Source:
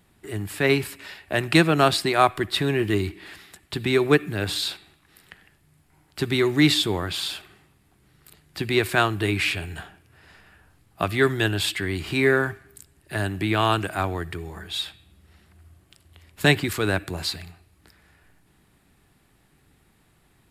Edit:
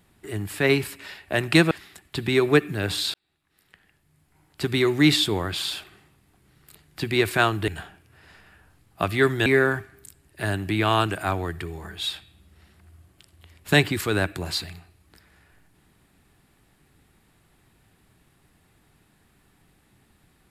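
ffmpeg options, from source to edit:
-filter_complex "[0:a]asplit=5[s0][s1][s2][s3][s4];[s0]atrim=end=1.712[s5];[s1]atrim=start=3.288:end=4.72,asetpts=PTS-STARTPTS,afade=t=out:st=1.428:d=0.004:c=hsin[s6];[s2]atrim=start=4.72:end=9.262,asetpts=PTS-STARTPTS,afade=t=in:d=1.54[s7];[s3]atrim=start=9.678:end=11.462[s8];[s4]atrim=start=12.178[s9];[s6][s7]concat=n=2:v=0:a=1[s10];[s5][s10]acrossfade=d=0.004:c1=hsin:c2=hsin[s11];[s11][s8]acrossfade=d=0.004:c1=hsin:c2=hsin[s12];[s12][s9]acrossfade=d=0.004:c1=hsin:c2=hsin"

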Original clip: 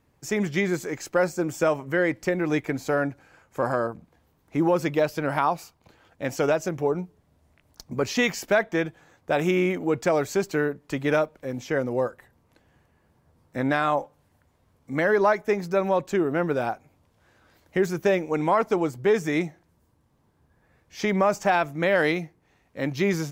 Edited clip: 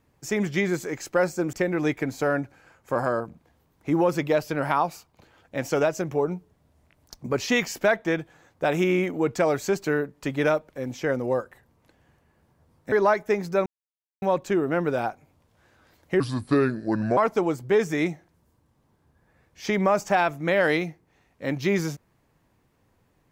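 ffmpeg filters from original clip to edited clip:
-filter_complex "[0:a]asplit=6[s0][s1][s2][s3][s4][s5];[s0]atrim=end=1.532[s6];[s1]atrim=start=2.198:end=13.592[s7];[s2]atrim=start=15.108:end=15.85,asetpts=PTS-STARTPTS,afade=t=out:st=0.738:d=0.004:c=hsin,apad=pad_dur=0.56[s8];[s3]atrim=start=15.85:end=17.834,asetpts=PTS-STARTPTS,afade=t=in:d=0.004:c=hsin[s9];[s4]atrim=start=17.83:end=18.52,asetpts=PTS-STARTPTS,asetrate=31311,aresample=44100[s10];[s5]atrim=start=18.516[s11];[s6][s7]acrossfade=d=0.004:c1=hsin:c2=hsin[s12];[s8][s9]concat=n=2:v=0:a=1[s13];[s12][s13]acrossfade=d=0.004:c1=hsin:c2=hsin[s14];[s14][s10]acrossfade=d=0.004:c1=hsin:c2=hsin[s15];[s15][s11]acrossfade=d=0.004:c1=hsin:c2=hsin"

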